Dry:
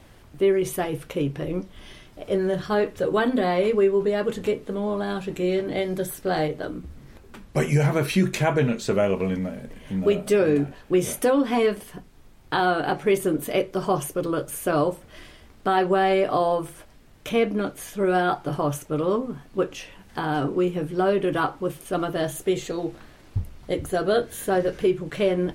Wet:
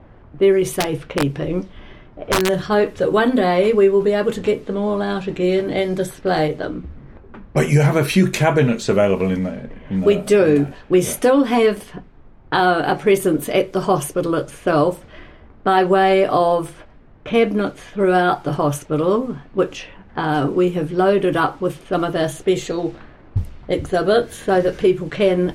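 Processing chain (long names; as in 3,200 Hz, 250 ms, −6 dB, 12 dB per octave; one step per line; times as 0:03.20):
0:00.80–0:02.49: wrap-around overflow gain 16.5 dB
low-pass that shuts in the quiet parts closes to 1,200 Hz, open at −21 dBFS
level +6 dB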